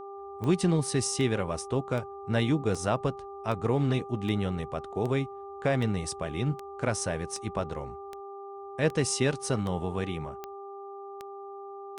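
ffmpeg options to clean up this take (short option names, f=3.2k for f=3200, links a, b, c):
-af "adeclick=t=4,bandreject=f=397:t=h:w=4,bandreject=f=794:t=h:w=4,bandreject=f=1.191k:t=h:w=4"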